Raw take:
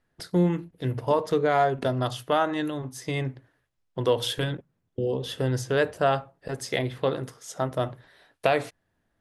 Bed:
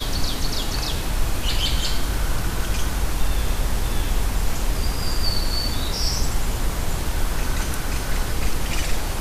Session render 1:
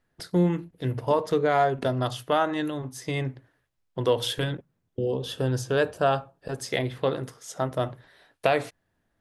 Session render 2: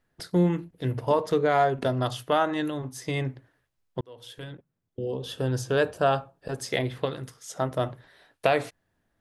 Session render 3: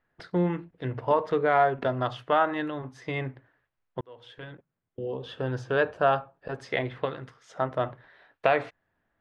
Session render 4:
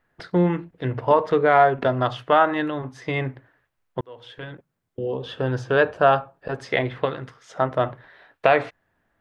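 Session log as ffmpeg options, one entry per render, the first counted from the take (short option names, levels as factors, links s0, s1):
-filter_complex "[0:a]asettb=1/sr,asplit=3[s0][s1][s2];[s0]atrim=end=5.154[s3];[s1]atrim=start=5.15:end=6.62,asetpts=PTS-STARTPTS,afade=t=in:d=0.004:c=qsin,afade=t=out:st=1.466:d=0.004:c=qsin,bandreject=f=2000:w=5.2[s4];[s2]atrim=start=6.616[s5];[s3][s4]acrossfade=d=0.004:c1=hsin:c2=qsin[s6];[s6][s5]acrossfade=d=0.004:c1=qsin:c2=hsin"
-filter_complex "[0:a]asettb=1/sr,asplit=3[s0][s1][s2];[s0]atrim=end=7.054[s3];[s1]atrim=start=7.05:end=7.5,asetpts=PTS-STARTPTS,afade=t=in:d=0.004:c=qsin,afade=t=out:st=0.446:d=0.004:c=qsin,equalizer=f=530:t=o:w=2.8:g=-8[s4];[s2]atrim=start=7.496[s5];[s3][s4]acrossfade=d=0.004:c1=hsin:c2=qsin[s6];[s6][s5]acrossfade=d=0.004:c1=qsin:c2=hsin,asplit=2[s7][s8];[s7]atrim=end=4.01,asetpts=PTS-STARTPTS,afade=t=out:st=4.006:d=0.004:c=hsin[s9];[s8]atrim=start=4.01,asetpts=PTS-STARTPTS,afade=t=in:d=1.69[s10];[s9][s10]concat=n=2:v=0:a=1"
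-af "lowpass=2000,tiltshelf=f=650:g=-5"
-af "volume=2,alimiter=limit=0.891:level=0:latency=1"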